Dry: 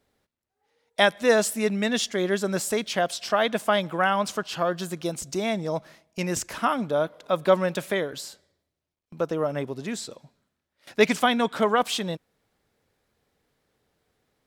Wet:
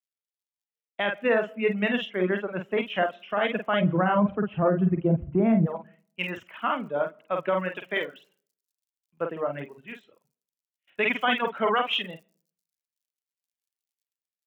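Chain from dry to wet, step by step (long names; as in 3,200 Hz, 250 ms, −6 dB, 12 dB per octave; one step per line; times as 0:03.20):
elliptic low-pass filter 2,900 Hz, stop band 40 dB
low-shelf EQ 230 Hz +9.5 dB
double-tracking delay 49 ms −4 dB
surface crackle 96 per second −53 dBFS
spectral tilt +1.5 dB per octave, from 0:03.80 −3 dB per octave, from 0:05.65 +3 dB per octave
convolution reverb RT60 0.80 s, pre-delay 75 ms, DRR 16.5 dB
reverb reduction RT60 0.96 s
brickwall limiter −15 dBFS, peak gain reduction 10.5 dB
high-pass filter 130 Hz
multiband upward and downward expander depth 100%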